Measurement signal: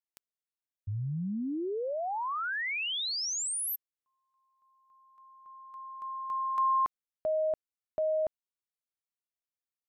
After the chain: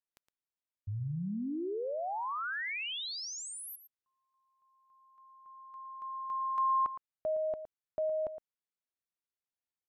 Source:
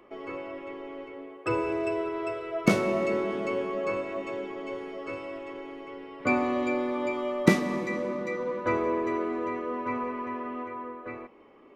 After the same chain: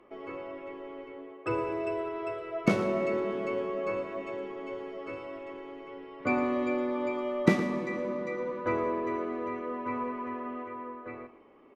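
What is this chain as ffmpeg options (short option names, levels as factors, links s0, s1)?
-af "aemphasis=mode=reproduction:type=cd,aecho=1:1:114:0.251,volume=0.708"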